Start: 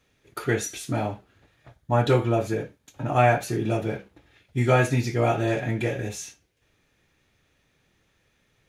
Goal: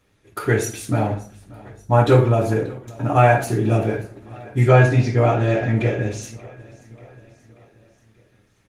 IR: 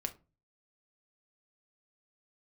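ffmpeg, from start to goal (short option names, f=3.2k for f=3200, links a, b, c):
-filter_complex "[0:a]asettb=1/sr,asplit=3[a][b][c];[a]atrim=end=4.684[d];[b]atrim=start=4.68:end=6.23,asetpts=PTS-STARTPTS,afade=t=in:d=0.004:c=qsin,afade=t=out:st=1.546:d=0.004:c=qsin,lowpass=5.6k[e];[c]atrim=start=6.226[f];[d][e]acrossfade=d=0.004:c1=hsin:c2=qsin[g];[g][f]acrossfade=d=0.004:c1=qsin:c2=hsin,equalizer=f=3k:t=o:w=0.79:g=-3,asettb=1/sr,asplit=3[h][i][j];[h]atrim=end=1.114[k];[i]atrim=start=1.11:end=1.95,asetpts=PTS-STARTPTS,afade=t=in:d=0.004:c=qsin,afade=t=out:st=0.836:d=0.004:c=qsin,aeval=exprs='val(0)+0.00316*(sin(2*PI*50*n/s)+sin(2*PI*2*50*n/s)/2+sin(2*PI*3*50*n/s)/3+sin(2*PI*4*50*n/s)/4+sin(2*PI*5*50*n/s)/5)':c=same[l];[j]atrim=start=1.946[m];[k][l]acrossfade=d=0.004:c1=hsin:c2=qsin[n];[n][m]acrossfade=d=0.004:c1=qsin:c2=hsin,aecho=1:1:584|1168|1752|2336:0.0841|0.0488|0.0283|0.0164[o];[1:a]atrim=start_sample=2205,afade=t=out:st=0.42:d=0.01,atrim=end_sample=18963,asetrate=25137,aresample=44100[p];[o][p]afir=irnorm=-1:irlink=0,volume=2.5dB" -ar 48000 -c:a libopus -b:a 24k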